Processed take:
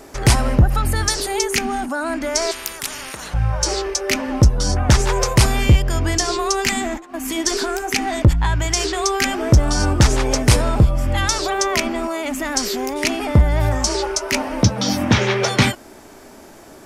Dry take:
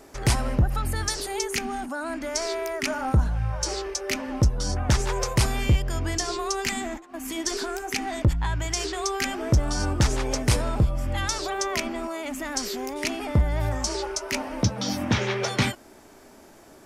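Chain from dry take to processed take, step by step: 2.51–3.34 s: spectrum-flattening compressor 10:1; trim +8 dB

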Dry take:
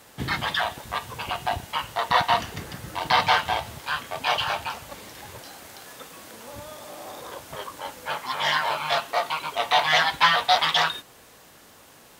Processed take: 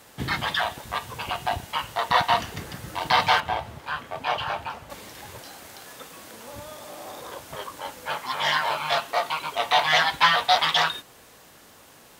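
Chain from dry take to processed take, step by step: 3.40–4.90 s: treble shelf 2.9 kHz -12 dB

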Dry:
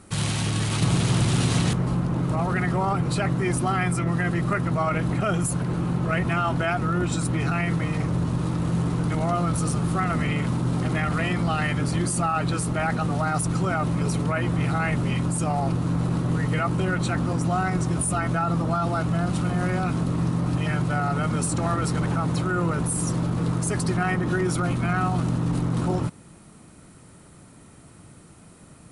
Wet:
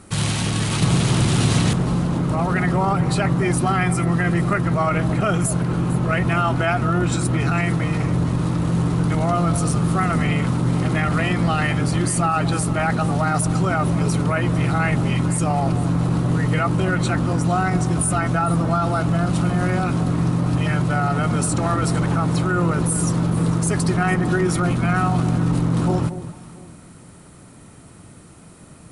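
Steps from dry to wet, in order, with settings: echo whose repeats swap between lows and highs 226 ms, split 840 Hz, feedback 51%, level -11 dB; trim +4 dB

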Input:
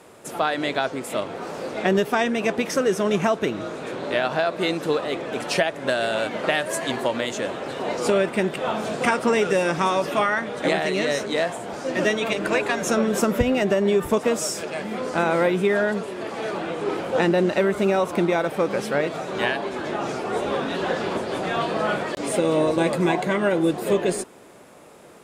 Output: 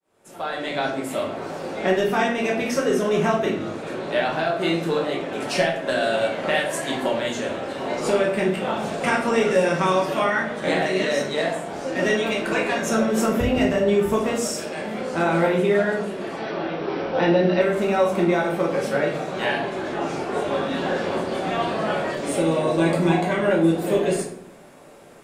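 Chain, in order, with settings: fade-in on the opening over 0.84 s; 16.36–17.61 s: brick-wall FIR low-pass 6 kHz; simulated room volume 110 m³, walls mixed, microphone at 1.1 m; trim -4.5 dB

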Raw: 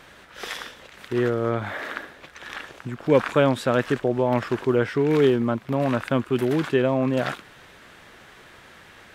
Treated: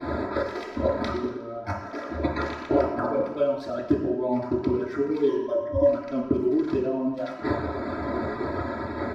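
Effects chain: local Wiener filter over 15 samples; expander -46 dBFS; in parallel at -4.5 dB: overload inside the chain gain 24 dB; on the sum: inverted gate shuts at -17 dBFS, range -32 dB; 5.28–5.87 s: rippled EQ curve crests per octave 1.2, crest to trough 18 dB; reverb removal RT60 1.6 s; thinning echo 120 ms, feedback 31%, high-pass 160 Hz, level -24 dB; compressor with a negative ratio -45 dBFS, ratio -0.5; comb 3.1 ms, depth 90%; reverberation RT60 0.95 s, pre-delay 3 ms, DRR -5 dB; trim +3.5 dB

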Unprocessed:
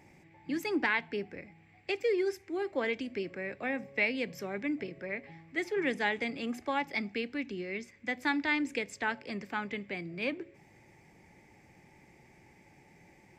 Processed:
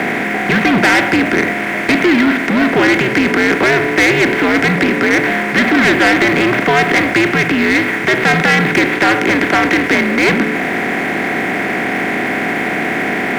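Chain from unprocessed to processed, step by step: spectral levelling over time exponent 0.4; mistuned SSB -120 Hz 330–3500 Hz; waveshaping leveller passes 3; trim +7.5 dB

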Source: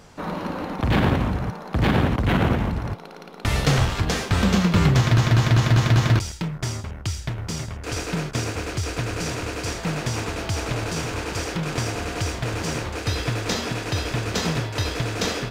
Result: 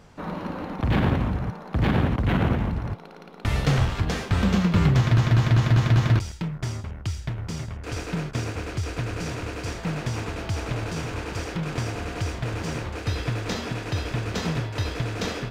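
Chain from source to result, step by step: tone controls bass +3 dB, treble -5 dB; trim -4 dB

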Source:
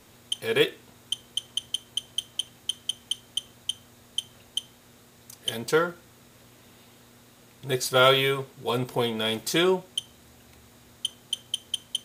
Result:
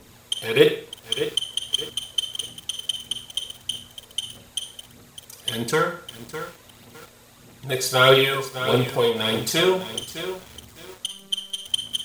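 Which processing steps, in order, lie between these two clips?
11.06–11.67 s: robot voice 195 Hz; phaser 1.6 Hz, delay 2.3 ms, feedback 52%; reverberation RT60 0.40 s, pre-delay 38 ms, DRR 6.5 dB; bit-crushed delay 607 ms, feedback 35%, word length 6-bit, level -10.5 dB; trim +2 dB

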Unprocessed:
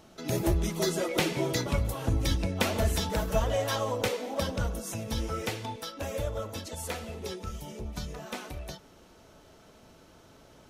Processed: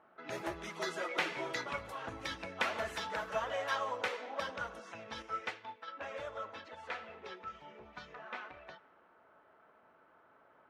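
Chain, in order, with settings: level-controlled noise filter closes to 1.3 kHz, open at -25.5 dBFS; band-pass filter 1.5 kHz, Q 1.3; 5.22–5.88 s: upward expansion 1.5:1, over -52 dBFS; trim +1 dB

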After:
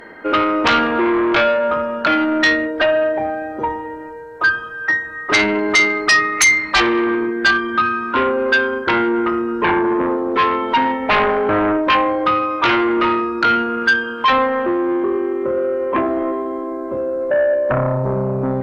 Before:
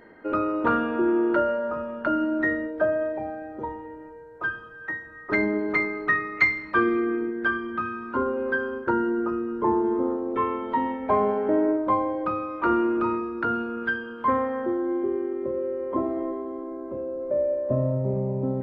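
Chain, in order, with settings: sine folder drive 12 dB, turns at -7.5 dBFS; tilt shelf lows -4.5 dB, about 670 Hz; trim -4 dB

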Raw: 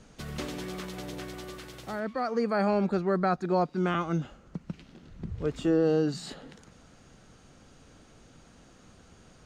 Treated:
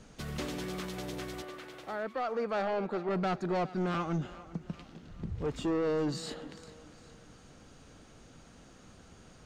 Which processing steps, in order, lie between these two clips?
1.42–3.09 s: tone controls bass -13 dB, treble -11 dB; saturation -26.5 dBFS, distortion -9 dB; thinning echo 403 ms, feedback 47%, high-pass 190 Hz, level -17 dB

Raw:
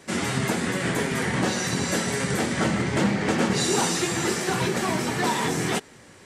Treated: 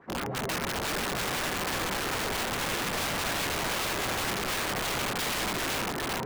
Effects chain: LFO low-pass sine 6 Hz 530–1600 Hz; band-stop 590 Hz, Q 12; feedback echo behind a low-pass 396 ms, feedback 74%, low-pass 3.6 kHz, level -3.5 dB; integer overflow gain 18.5 dB; trim -7 dB

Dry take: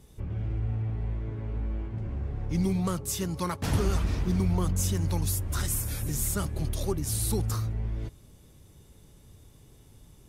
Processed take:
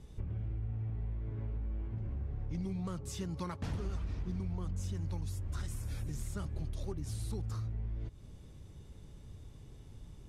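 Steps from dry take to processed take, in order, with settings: one-sided wavefolder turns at -19 dBFS; bass shelf 160 Hz +6 dB; compression 4:1, threshold -35 dBFS, peak gain reduction 15 dB; distance through air 60 m; trim -1.5 dB

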